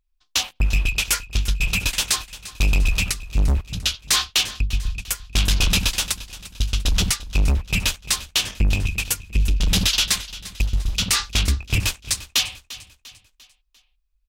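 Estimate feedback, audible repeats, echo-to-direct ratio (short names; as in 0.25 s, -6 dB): 45%, 3, -15.5 dB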